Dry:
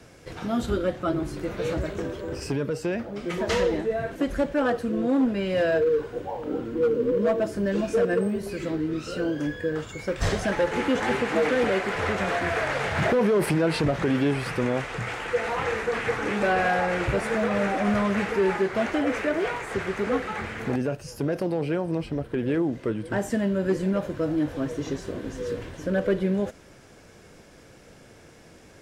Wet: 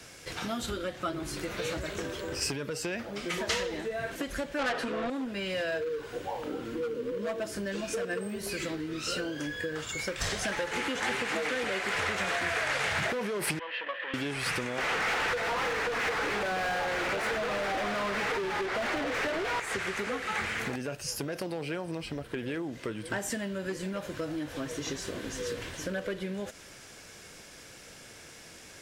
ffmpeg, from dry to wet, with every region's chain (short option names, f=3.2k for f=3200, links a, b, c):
-filter_complex "[0:a]asettb=1/sr,asplit=3[a][b][c];[a]atrim=end=4.594[d];[b]atrim=start=4.59:end=5.1,asetpts=PTS-STARTPTS,afade=t=in:d=0.004:c=qsin,afade=t=out:st=0.506:d=0.004:c=qsin,highshelf=f=3.5k:g=-7,aecho=1:1:7.4:0.66,atrim=end_sample=22491,asplit=2[e][f];[f]highpass=f=720:p=1,volume=23dB,asoftclip=type=tanh:threshold=-12dB[g];[e][g]amix=inputs=2:normalize=0,lowpass=f=2.4k:p=1,volume=-6dB[h];[c]atrim=start=5.096[i];[d][h]acrossfade=d=0.004:c1=hsin:c2=qsin[j];[j][i]acrossfade=d=0.004:c1=qsin:c2=hsin,asettb=1/sr,asplit=3[k][l][m];[k]atrim=end=13.594[n];[l]atrim=start=13.59:end=14.14,asetpts=PTS-STARTPTS,afade=t=in:d=0.004:c=qsin,afade=t=out:st=0.546:d=0.004:c=qsin,asplit=3[o][p][q];[o]bandpass=f=530:t=q:w=8,volume=0dB[r];[p]bandpass=f=1.84k:t=q:w=8,volume=-6dB[s];[q]bandpass=f=2.48k:t=q:w=8,volume=-9dB[t];[r][s][t]amix=inputs=3:normalize=0,aeval=exprs='clip(val(0),-1,0.0075)':c=same,highpass=f=260:w=0.5412,highpass=f=260:w=1.3066,equalizer=f=410:t=q:w=4:g=-8,equalizer=f=1.1k:t=q:w=4:g=5,equalizer=f=1.7k:t=q:w=4:g=9,equalizer=f=3.1k:t=q:w=4:g=10,lowpass=f=3.6k:w=0.5412,lowpass=f=3.6k:w=1.3066[u];[m]atrim=start=14.136[v];[n][u]acrossfade=d=0.004:c1=hsin:c2=qsin[w];[w][v]acrossfade=d=0.004:c1=qsin:c2=hsin,asettb=1/sr,asplit=3[x][y][z];[x]atrim=end=14.784[aa];[y]atrim=start=14.78:end=19.6,asetpts=PTS-STARTPTS,afade=t=in:d=0.004:c=qsin,afade=t=out:st=4.816:d=0.004:c=qsin,highpass=270,asplit=2[ab][ac];[ac]highpass=f=720:p=1,volume=31dB,asoftclip=type=tanh:threshold=-12.5dB[ad];[ab][ad]amix=inputs=2:normalize=0,lowpass=f=1.3k:p=1,volume=-6dB,tiltshelf=f=650:g=4[ae];[z]atrim=start=19.596[af];[aa][ae]acrossfade=d=0.004:c1=hsin:c2=qsin[ag];[ag][af]acrossfade=d=0.004:c1=qsin:c2=hsin,acompressor=threshold=-28dB:ratio=6,tiltshelf=f=1.3k:g=-7,volume=2dB"